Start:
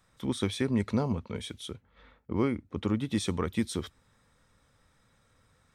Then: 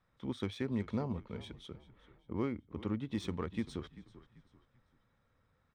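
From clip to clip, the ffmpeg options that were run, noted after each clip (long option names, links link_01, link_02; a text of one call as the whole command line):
ffmpeg -i in.wav -filter_complex "[0:a]asplit=4[link_01][link_02][link_03][link_04];[link_02]adelay=389,afreqshift=-35,volume=-16.5dB[link_05];[link_03]adelay=778,afreqshift=-70,volume=-24.9dB[link_06];[link_04]adelay=1167,afreqshift=-105,volume=-33.3dB[link_07];[link_01][link_05][link_06][link_07]amix=inputs=4:normalize=0,adynamicsmooth=sensitivity=4:basefreq=3500,volume=-7.5dB" out.wav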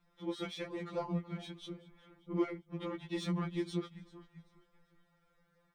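ffmpeg -i in.wav -af "afftfilt=real='re*2.83*eq(mod(b,8),0)':imag='im*2.83*eq(mod(b,8),0)':win_size=2048:overlap=0.75,volume=5dB" out.wav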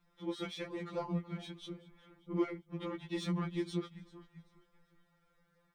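ffmpeg -i in.wav -af "equalizer=frequency=630:width_type=o:width=0.38:gain=-3" out.wav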